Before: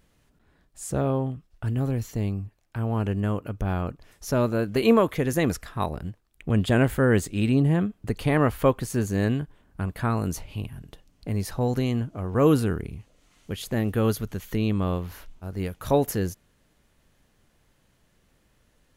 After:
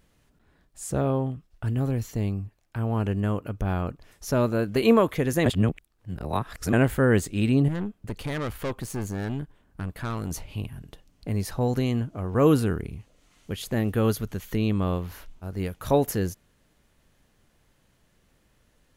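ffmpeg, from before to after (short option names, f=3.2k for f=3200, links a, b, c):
-filter_complex "[0:a]asettb=1/sr,asplit=3[a][b][c];[a]atrim=end=7.684[d];[b]atrim=start=7.68:end=10.31,asetpts=PTS-STARTPTS,afade=t=in:d=0.004:c=qsin,afade=t=out:st=2.626:d=0.004:c=qsin,aeval=exprs='(tanh(20*val(0)+0.55)-tanh(0.55))/20':c=same[e];[c]atrim=start=10.306[f];[d][e]acrossfade=d=0.004:c1=hsin:c2=qsin[g];[g][f]acrossfade=d=0.004:c1=qsin:c2=hsin,asplit=3[h][i][j];[h]atrim=end=5.462[k];[i]atrim=start=5.458:end=6.732,asetpts=PTS-STARTPTS,areverse[l];[j]atrim=start=6.728[m];[k][l]acrossfade=d=0.004:c1=hsin:c2=hsin[n];[n][m]acrossfade=d=0.004:c1=hsin:c2=hsin"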